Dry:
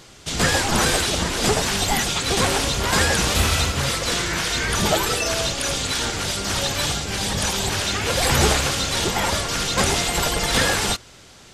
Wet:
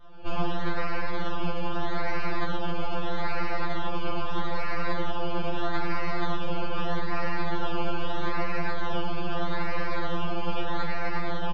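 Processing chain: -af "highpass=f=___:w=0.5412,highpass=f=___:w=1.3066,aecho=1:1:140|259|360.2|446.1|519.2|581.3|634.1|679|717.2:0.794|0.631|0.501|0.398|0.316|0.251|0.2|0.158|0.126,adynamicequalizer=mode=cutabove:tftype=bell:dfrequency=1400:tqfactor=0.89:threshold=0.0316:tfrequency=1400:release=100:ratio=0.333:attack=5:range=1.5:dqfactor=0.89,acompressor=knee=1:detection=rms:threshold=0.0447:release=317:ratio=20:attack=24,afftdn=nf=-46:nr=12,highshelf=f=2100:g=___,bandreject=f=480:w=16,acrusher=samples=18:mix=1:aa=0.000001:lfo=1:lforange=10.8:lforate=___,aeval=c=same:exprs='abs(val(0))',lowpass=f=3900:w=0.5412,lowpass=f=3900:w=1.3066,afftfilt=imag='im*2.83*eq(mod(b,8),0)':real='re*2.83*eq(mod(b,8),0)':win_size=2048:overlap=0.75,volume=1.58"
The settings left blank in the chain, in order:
290, 290, 4.5, 0.79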